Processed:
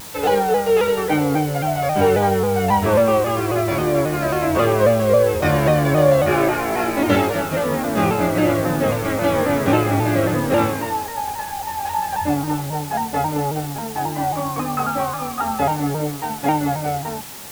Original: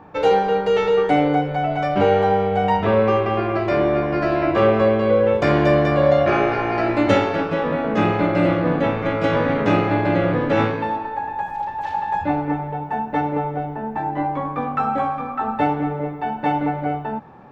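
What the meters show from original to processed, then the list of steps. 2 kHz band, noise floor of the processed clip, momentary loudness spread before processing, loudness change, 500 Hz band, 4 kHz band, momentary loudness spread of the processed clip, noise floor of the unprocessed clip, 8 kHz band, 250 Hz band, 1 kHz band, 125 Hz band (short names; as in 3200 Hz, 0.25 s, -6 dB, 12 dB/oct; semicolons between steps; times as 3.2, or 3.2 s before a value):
0.0 dB, -30 dBFS, 9 LU, +0.5 dB, +0.5 dB, +3.0 dB, 8 LU, -30 dBFS, n/a, 0.0 dB, 0.0 dB, +2.0 dB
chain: bell 81 Hz +8.5 dB 0.58 oct; notches 50/100 Hz; chorus 0.8 Hz, delay 19.5 ms, depth 2.4 ms; added noise white -39 dBFS; shaped vibrato saw down 3.7 Hz, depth 100 cents; gain +3 dB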